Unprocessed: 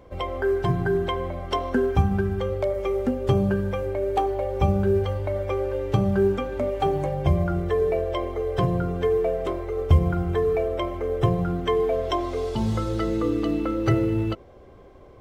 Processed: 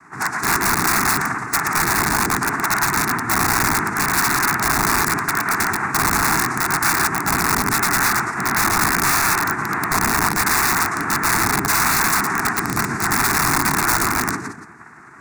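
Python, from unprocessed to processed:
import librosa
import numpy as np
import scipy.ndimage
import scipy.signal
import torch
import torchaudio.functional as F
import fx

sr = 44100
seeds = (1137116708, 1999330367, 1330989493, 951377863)

p1 = x + 10.0 ** (-11.0 / 20.0) * np.pad(x, (int(177 * sr / 1000.0), 0))[:len(x)]
p2 = fx.chorus_voices(p1, sr, voices=6, hz=0.94, base_ms=13, depth_ms=3.4, mix_pct=50)
p3 = fx.noise_vocoder(p2, sr, seeds[0], bands=3)
p4 = p3 + 10.0 ** (-5.5 / 20.0) * np.pad(p3, (int(116 * sr / 1000.0), 0))[:len(p3)]
p5 = fx.over_compress(p4, sr, threshold_db=-24.0, ratio=-0.5)
p6 = p4 + (p5 * 10.0 ** (1.5 / 20.0))
p7 = (np.mod(10.0 ** (13.5 / 20.0) * p6 + 1.0, 2.0) - 1.0) / 10.0 ** (13.5 / 20.0)
p8 = fx.low_shelf(p7, sr, hz=290.0, db=-8.0)
p9 = fx.fixed_phaser(p8, sr, hz=1300.0, stages=4)
y = p9 * 10.0 ** (6.0 / 20.0)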